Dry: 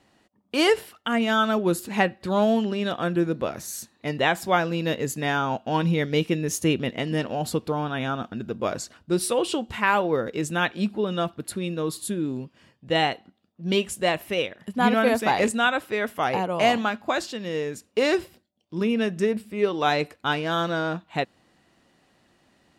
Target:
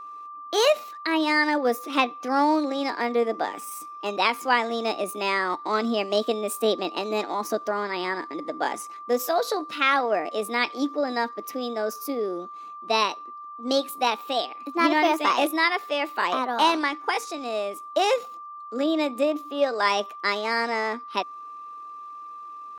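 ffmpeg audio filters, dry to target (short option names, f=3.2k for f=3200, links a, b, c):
-af "highpass=f=180:w=0.5412,highpass=f=180:w=1.3066,highshelf=f=9.2k:g=-8.5,aeval=exprs='val(0)+0.0141*sin(2*PI*860*n/s)':c=same,asetrate=60591,aresample=44100,atempo=0.727827"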